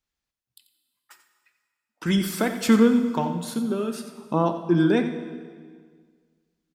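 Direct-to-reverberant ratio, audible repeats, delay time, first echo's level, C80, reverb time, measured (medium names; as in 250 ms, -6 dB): 8.0 dB, 1, 89 ms, -13.0 dB, 9.0 dB, 1.7 s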